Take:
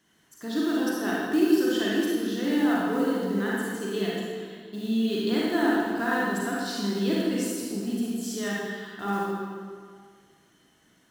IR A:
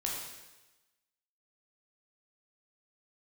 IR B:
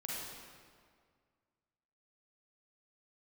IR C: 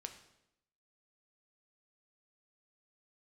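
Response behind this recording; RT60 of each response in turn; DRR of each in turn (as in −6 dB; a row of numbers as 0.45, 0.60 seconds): B; 1.1, 1.9, 0.85 seconds; −3.0, −5.5, 5.5 decibels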